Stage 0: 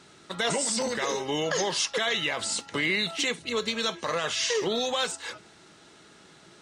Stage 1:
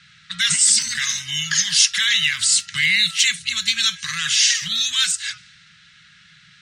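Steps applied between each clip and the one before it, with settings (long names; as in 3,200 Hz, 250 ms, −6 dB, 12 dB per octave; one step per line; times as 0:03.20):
low-pass that shuts in the quiet parts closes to 2,600 Hz, open at −27.5 dBFS
elliptic band-stop filter 160–1,600 Hz, stop band 80 dB
high-shelf EQ 2,100 Hz +11 dB
level +4.5 dB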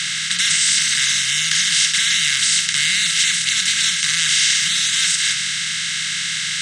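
compressor on every frequency bin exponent 0.2
level −8.5 dB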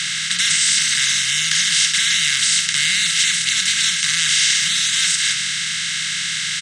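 far-end echo of a speakerphone 110 ms, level −20 dB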